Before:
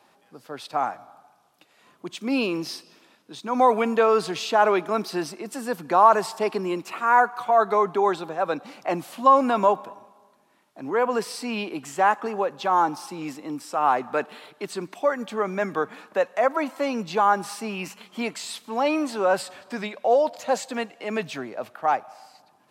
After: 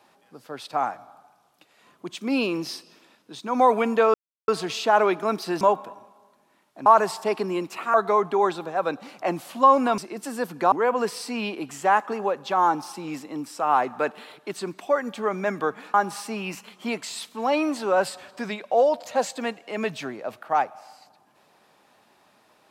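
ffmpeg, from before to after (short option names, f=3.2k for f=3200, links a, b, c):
-filter_complex "[0:a]asplit=8[a][b][c][d][e][f][g][h];[a]atrim=end=4.14,asetpts=PTS-STARTPTS,afade=t=out:st=4.136:d=0.004:c=hsin,apad=pad_dur=0.34[i];[b]atrim=start=4.14:end=5.272,asetpts=PTS-STARTPTS,afade=t=in:d=0.004:c=hsin[j];[c]atrim=start=9.608:end=10.862[k];[d]atrim=start=6.008:end=7.092[l];[e]atrim=start=7.568:end=9.612[m];[f]atrim=start=5.268:end=6.012[n];[g]atrim=start=10.858:end=16.082[o];[h]atrim=start=17.268[p];[i][j]concat=n=2:v=0:a=1[q];[q][k]acrossfade=d=0.004:c1=hsin:c2=hsin[r];[r][l]acrossfade=d=0.004:c1=hsin:c2=hsin[s];[s][m]acrossfade=d=0.004:c1=hsin:c2=hsin[t];[t][n]acrossfade=d=0.004:c1=hsin:c2=hsin[u];[u][o]acrossfade=d=0.004:c1=hsin:c2=hsin[v];[v][p]acrossfade=d=0.004:c1=hsin:c2=hsin"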